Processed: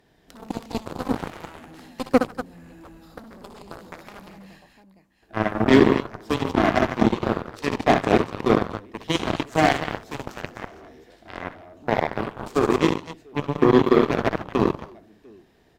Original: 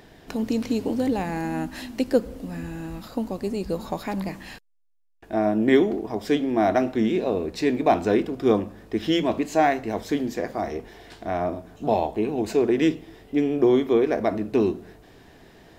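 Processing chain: tapped delay 52/64/146/239/701 ms -19.5/-4/-8.5/-6/-13.5 dB; added harmonics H 7 -15 dB, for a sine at -4.5 dBFS; dynamic EQ 130 Hz, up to +5 dB, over -38 dBFS, Q 0.86

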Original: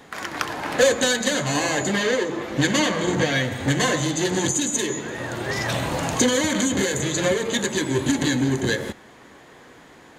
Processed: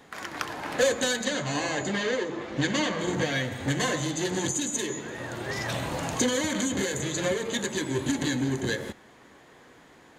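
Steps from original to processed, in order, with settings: 1.25–3 LPF 6800 Hz 12 dB/oct; gain -6 dB

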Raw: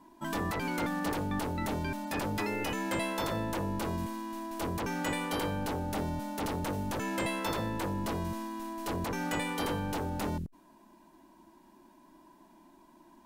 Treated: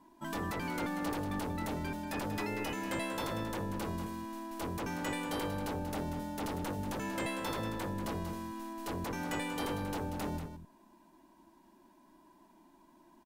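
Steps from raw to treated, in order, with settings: echo 0.187 s -9.5 dB; gain -4 dB

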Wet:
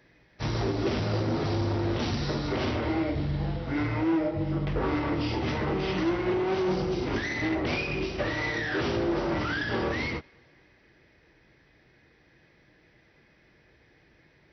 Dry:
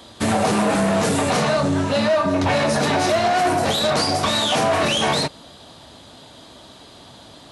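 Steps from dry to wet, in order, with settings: thinning echo 0.108 s, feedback 59%, level -23 dB; wide varispeed 0.517×; upward expander 1.5:1, over -34 dBFS; gain -7.5 dB

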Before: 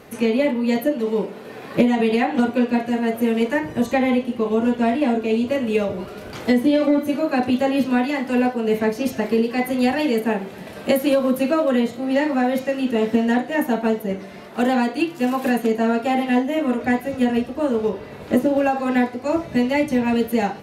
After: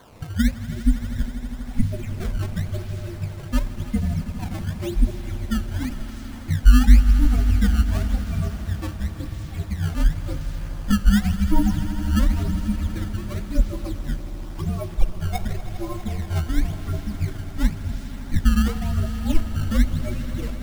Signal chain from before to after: per-bin expansion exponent 1.5; steep low-pass 3200 Hz 72 dB/oct; spectral gate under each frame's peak -25 dB strong; bell 320 Hz +14.5 dB 0.95 oct; frequency shift -340 Hz; in parallel at -8.5 dB: requantised 6-bit, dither triangular; on the sum: fixed phaser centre 430 Hz, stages 6; decimation with a swept rate 17×, swing 160% 0.93 Hz; on a send: swelling echo 81 ms, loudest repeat 5, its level -16.5 dB; on the sum: gain -5 dB

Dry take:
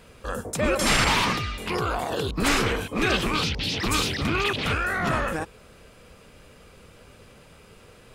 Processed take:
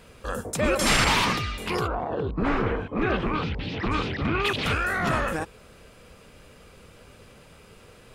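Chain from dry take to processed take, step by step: 1.86–4.43 LPF 1100 Hz -> 2400 Hz 12 dB/oct

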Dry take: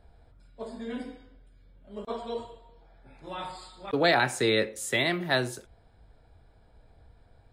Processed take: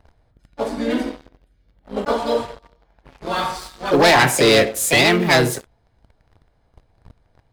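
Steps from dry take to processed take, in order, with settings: harmoniser +4 st -4 dB; sample leveller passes 3; gain +2 dB

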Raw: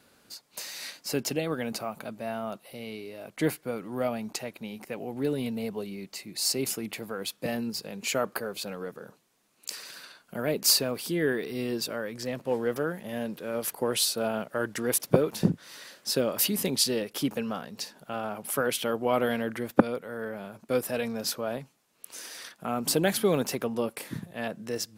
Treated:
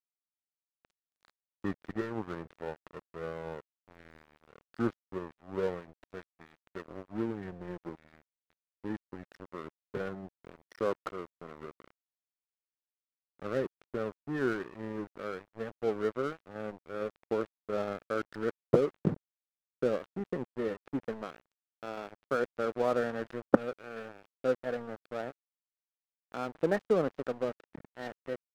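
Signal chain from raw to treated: speed glide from 68% -> 107%; rippled Chebyshev low-pass 1900 Hz, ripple 6 dB; crossover distortion -38.5 dBFS

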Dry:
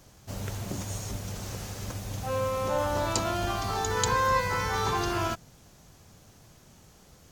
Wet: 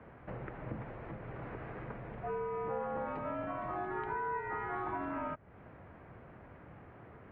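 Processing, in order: compressor 6:1, threshold -41 dBFS, peak gain reduction 19 dB; mistuned SSB -70 Hz 160–2200 Hz; gain +6 dB

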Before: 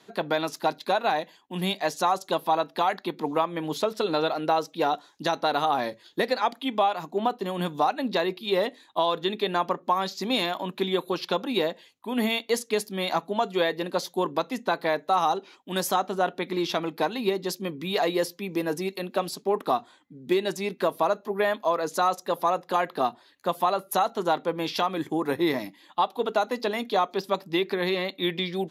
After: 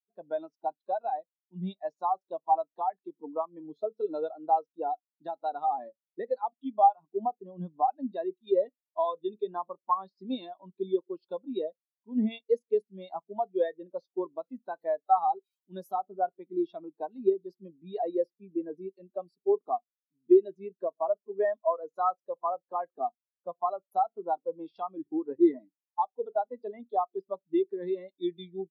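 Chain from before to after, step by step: 14.25–16.01 switching spikes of -29 dBFS; spectral expander 2.5:1

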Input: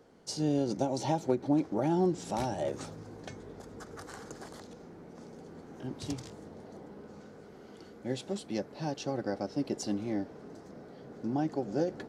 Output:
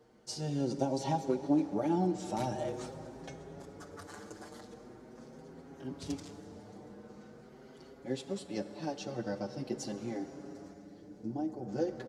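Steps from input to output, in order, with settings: 10.72–11.67 bell 540 Hz -> 3500 Hz -13.5 dB 2.5 oct; plate-style reverb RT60 4.9 s, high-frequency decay 0.65×, DRR 10 dB; endless flanger 6.2 ms +0.43 Hz

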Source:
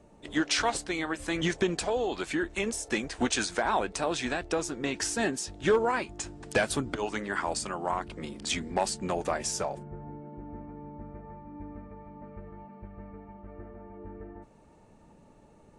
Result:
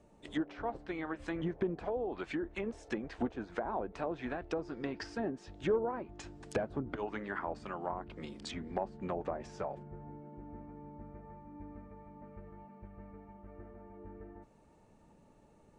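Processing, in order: treble ducked by the level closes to 770 Hz, closed at -25 dBFS; 4.56–5.15 bell 4900 Hz +14 dB 0.25 oct; gain -6 dB

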